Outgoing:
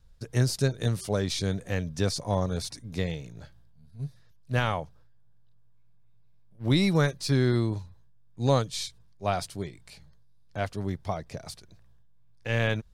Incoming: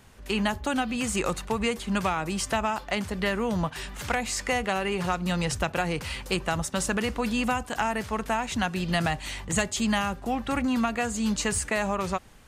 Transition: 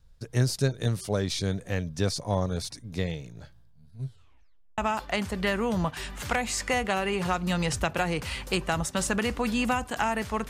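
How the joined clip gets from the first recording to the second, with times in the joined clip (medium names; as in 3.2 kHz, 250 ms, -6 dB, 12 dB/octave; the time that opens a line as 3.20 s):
outgoing
4.00 s: tape stop 0.78 s
4.78 s: go over to incoming from 2.57 s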